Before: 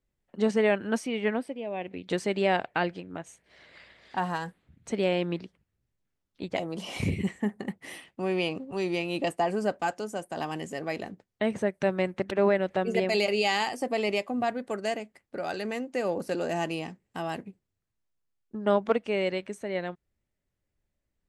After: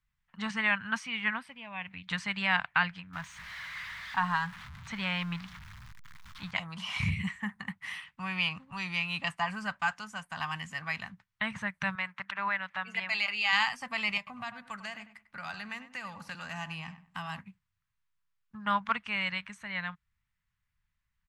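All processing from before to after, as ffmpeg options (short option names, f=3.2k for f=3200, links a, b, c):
-filter_complex "[0:a]asettb=1/sr,asplit=3[a][b][c];[a]atrim=end=3.134[d];[b]atrim=start=3.13:end=6.51,asetpts=PTS-STARTPTS,afade=t=in:d=0.004:c=qsin,afade=t=out:st=3.376:d=0.004:c=qsin,aeval=exprs='val(0)+0.5*0.00891*sgn(val(0))':c=same,equalizer=f=2.7k:t=o:w=0.3:g=-3,acrossover=split=5800[e][f];[f]acompressor=threshold=-55dB:ratio=4:attack=1:release=60[g];[e][g]amix=inputs=2:normalize=0[h];[c]atrim=start=6.506[i];[d][h]acrossfade=d=0.004:c1=hsin:c2=qsin[j];[j][i]acrossfade=d=0.004:c1=qsin:c2=hsin,asettb=1/sr,asplit=3[k][l][m];[k]atrim=end=11.954[n];[l]atrim=start=11.95:end=13.53,asetpts=PTS-STARTPTS,afade=t=in:d=0.004:c=qsin,afade=t=out:st=1.576:d=0.004:c=qsin,highpass=f=660:p=1,highshelf=f=4k:g=-8[o];[m]atrim=start=13.526[p];[n][o]acrossfade=d=0.004:c1=hsin:c2=qsin[q];[q][p]acrossfade=d=0.004:c1=qsin:c2=hsin,asettb=1/sr,asplit=3[r][s][t];[r]atrim=end=14.174[u];[s]atrim=start=14.17:end=17.39,asetpts=PTS-STARTPTS,afade=t=in:d=0.004:c=qsin,afade=t=out:st=3.216:d=0.004:c=qsin,acrossover=split=950|2700[v][w][x];[v]acompressor=threshold=-31dB:ratio=4[y];[w]acompressor=threshold=-47dB:ratio=4[z];[x]acompressor=threshold=-48dB:ratio=4[aa];[y][z][aa]amix=inputs=3:normalize=0,asplit=2[ab][ac];[ac]adelay=98,lowpass=f=2.2k:p=1,volume=-11.5dB,asplit=2[ad][ae];[ae]adelay=98,lowpass=f=2.2k:p=1,volume=0.26,asplit=2[af][ag];[ag]adelay=98,lowpass=f=2.2k:p=1,volume=0.26[ah];[ab][ad][af][ah]amix=inputs=4:normalize=0,atrim=end_sample=142002[ai];[t]atrim=start=17.386[aj];[u][ai]acrossfade=d=0.004:c1=hsin:c2=qsin[ak];[ak][aj]acrossfade=d=0.004:c1=qsin:c2=hsin,equalizer=f=550:t=o:w=2.4:g=-6,acrossover=split=8100[al][am];[am]acompressor=threshold=-58dB:ratio=4:attack=1:release=60[an];[al][an]amix=inputs=2:normalize=0,firequalizer=gain_entry='entry(170,0);entry(350,-26);entry(1000,9);entry(4800,-1);entry(8200,-5)':delay=0.05:min_phase=1"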